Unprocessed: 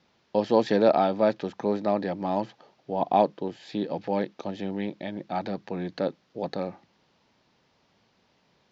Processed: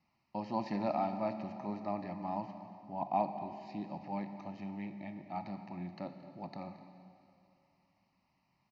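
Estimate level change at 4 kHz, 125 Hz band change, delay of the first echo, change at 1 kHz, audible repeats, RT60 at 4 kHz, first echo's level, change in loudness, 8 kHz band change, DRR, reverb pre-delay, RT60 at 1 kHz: -17.0 dB, -8.5 dB, 0.225 s, -9.0 dB, 1, 2.5 s, -18.5 dB, -12.0 dB, n/a, 7.5 dB, 6 ms, 2.7 s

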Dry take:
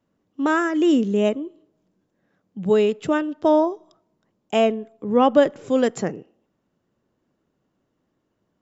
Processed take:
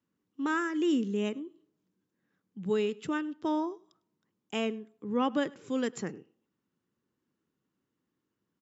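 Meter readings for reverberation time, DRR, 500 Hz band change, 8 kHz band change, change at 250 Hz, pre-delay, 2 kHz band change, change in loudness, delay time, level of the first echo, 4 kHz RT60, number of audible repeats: none, none, -14.0 dB, n/a, -9.5 dB, none, -8.0 dB, -11.5 dB, 0.102 s, -24.0 dB, none, 1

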